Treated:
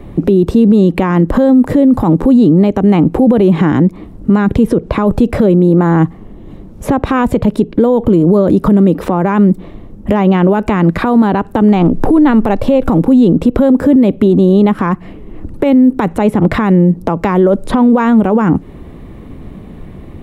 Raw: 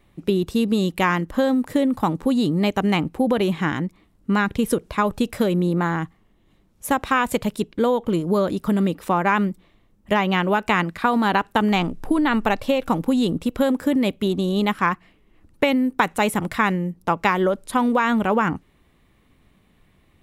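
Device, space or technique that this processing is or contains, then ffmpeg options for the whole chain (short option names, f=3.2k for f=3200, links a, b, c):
mastering chain: -filter_complex "[0:a]equalizer=f=400:t=o:w=2.2:g=3,acrossover=split=170|5100[a][b][c];[a]acompressor=threshold=-38dB:ratio=4[d];[b]acompressor=threshold=-23dB:ratio=4[e];[c]acompressor=threshold=-51dB:ratio=4[f];[d][e][f]amix=inputs=3:normalize=0,acompressor=threshold=-34dB:ratio=1.5,tiltshelf=f=1.1k:g=8.5,alimiter=level_in=20.5dB:limit=-1dB:release=50:level=0:latency=1,volume=-1dB"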